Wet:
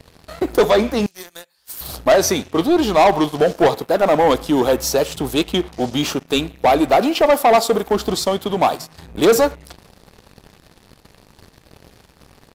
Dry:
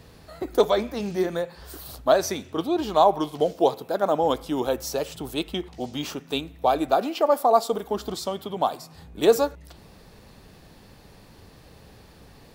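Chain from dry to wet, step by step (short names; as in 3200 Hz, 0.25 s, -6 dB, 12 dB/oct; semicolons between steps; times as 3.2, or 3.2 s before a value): 1.06–1.81 pre-emphasis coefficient 0.97; sample leveller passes 3; downsampling 32000 Hz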